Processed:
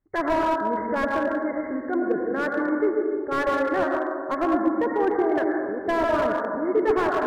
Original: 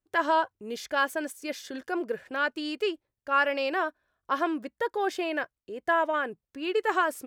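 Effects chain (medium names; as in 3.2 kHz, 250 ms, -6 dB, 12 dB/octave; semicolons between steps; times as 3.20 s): bass shelf 390 Hz +10 dB; algorithmic reverb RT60 2.3 s, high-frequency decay 0.3×, pre-delay 55 ms, DRR 0 dB; careless resampling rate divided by 8×, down none, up hold; brick-wall FIR low-pass 2.2 kHz; slew-rate limiter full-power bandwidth 92 Hz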